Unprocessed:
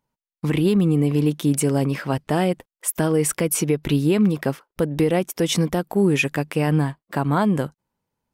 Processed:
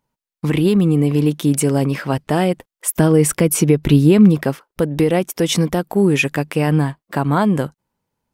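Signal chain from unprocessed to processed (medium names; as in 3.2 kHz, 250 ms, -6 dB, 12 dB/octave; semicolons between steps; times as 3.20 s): 2.95–4.44 s: bass shelf 330 Hz +6.5 dB; trim +3.5 dB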